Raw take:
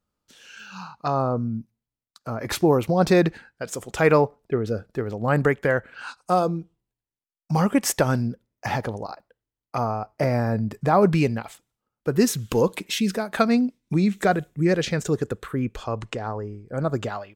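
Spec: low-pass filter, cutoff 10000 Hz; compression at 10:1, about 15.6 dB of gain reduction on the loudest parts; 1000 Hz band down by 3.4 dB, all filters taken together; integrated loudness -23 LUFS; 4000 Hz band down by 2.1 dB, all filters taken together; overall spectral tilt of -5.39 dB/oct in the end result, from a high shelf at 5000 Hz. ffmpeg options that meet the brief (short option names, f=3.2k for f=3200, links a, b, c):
-af "lowpass=10k,equalizer=f=1k:t=o:g=-5,equalizer=f=4k:t=o:g=-4.5,highshelf=f=5k:g=4,acompressor=threshold=-30dB:ratio=10,volume=12.5dB"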